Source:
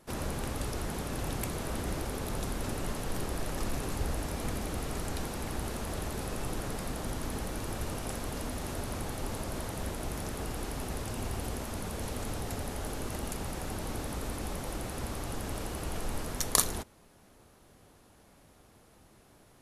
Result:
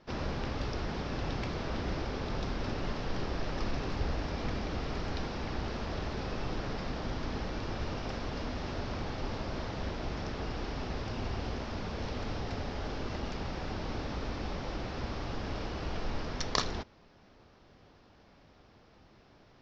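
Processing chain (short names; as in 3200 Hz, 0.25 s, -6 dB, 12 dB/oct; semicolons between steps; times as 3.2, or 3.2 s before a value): elliptic low-pass 5400 Hz, stop band 50 dB; gain +1 dB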